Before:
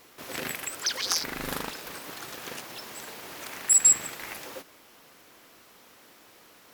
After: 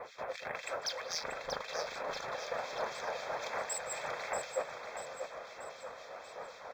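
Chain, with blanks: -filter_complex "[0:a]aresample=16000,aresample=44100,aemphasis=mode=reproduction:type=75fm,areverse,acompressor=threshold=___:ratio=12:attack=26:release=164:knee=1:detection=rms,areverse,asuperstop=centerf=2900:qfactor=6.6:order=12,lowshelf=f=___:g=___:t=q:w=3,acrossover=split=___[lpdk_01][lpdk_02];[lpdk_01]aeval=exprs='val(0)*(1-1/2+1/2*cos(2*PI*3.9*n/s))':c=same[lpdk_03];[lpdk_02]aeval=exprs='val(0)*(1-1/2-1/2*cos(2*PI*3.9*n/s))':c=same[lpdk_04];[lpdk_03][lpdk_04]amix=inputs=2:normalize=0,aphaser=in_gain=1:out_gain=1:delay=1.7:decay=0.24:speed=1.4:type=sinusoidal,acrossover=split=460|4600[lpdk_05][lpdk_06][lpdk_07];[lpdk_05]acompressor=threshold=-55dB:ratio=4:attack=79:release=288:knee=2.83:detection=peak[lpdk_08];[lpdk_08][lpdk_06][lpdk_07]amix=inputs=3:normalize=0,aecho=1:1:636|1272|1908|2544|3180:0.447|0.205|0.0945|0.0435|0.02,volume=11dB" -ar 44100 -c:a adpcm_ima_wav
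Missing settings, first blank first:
-45dB, 410, -9, 2100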